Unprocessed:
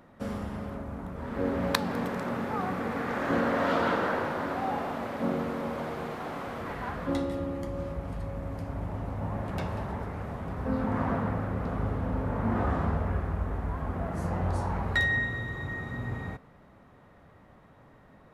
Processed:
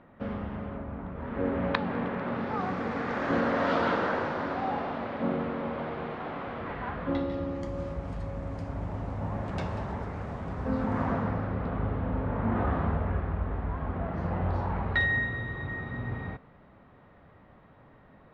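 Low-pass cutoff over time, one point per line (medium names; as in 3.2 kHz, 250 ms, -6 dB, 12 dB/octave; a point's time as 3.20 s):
low-pass 24 dB/octave
2.19 s 3.2 kHz
2.65 s 6 kHz
4.22 s 6 kHz
5.38 s 3.6 kHz
7.16 s 3.6 kHz
7.70 s 7.9 kHz
11.01 s 7.9 kHz
11.71 s 3.8 kHz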